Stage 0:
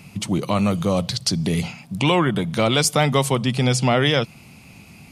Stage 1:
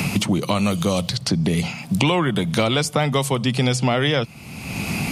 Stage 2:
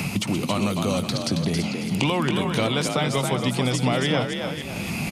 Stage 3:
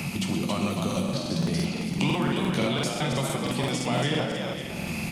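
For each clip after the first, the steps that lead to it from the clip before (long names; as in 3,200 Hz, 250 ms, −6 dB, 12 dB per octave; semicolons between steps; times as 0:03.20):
multiband upward and downward compressor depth 100%; level −1 dB
delay that plays each chunk backwards 289 ms, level −10 dB; echo with shifted repeats 274 ms, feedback 31%, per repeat +46 Hz, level −5.5 dB; level −4.5 dB
convolution reverb RT60 1.0 s, pre-delay 6 ms, DRR 2.5 dB; regular buffer underruns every 0.17 s, samples 2,048, repeat, from 0:00.87; level −5.5 dB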